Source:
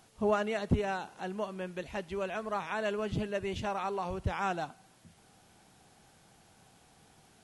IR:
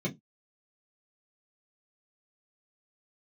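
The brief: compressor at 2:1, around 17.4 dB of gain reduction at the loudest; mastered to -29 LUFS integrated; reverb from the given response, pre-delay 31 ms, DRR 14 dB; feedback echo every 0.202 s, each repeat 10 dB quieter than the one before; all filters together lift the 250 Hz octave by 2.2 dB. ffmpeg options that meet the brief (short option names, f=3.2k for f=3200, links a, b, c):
-filter_complex "[0:a]equalizer=f=250:t=o:g=3,acompressor=threshold=-53dB:ratio=2,aecho=1:1:202|404|606|808:0.316|0.101|0.0324|0.0104,asplit=2[a][b];[1:a]atrim=start_sample=2205,adelay=31[c];[b][c]afir=irnorm=-1:irlink=0,volume=-19dB[d];[a][d]amix=inputs=2:normalize=0,volume=16.5dB"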